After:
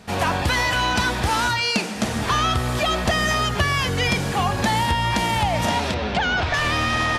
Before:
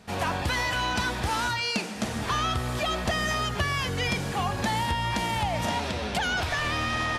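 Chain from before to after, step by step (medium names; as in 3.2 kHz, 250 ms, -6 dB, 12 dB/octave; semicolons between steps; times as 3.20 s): 5.94–6.54 s: Gaussian low-pass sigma 1.6 samples; trim +6.5 dB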